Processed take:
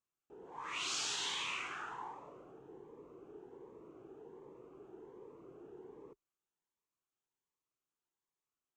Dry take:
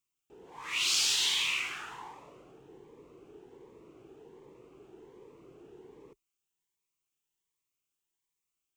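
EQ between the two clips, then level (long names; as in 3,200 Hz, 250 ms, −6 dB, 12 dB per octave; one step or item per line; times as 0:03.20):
high-frequency loss of the air 120 metres
low-shelf EQ 160 Hz −7.5 dB
flat-topped bell 3,200 Hz −9 dB
+1.0 dB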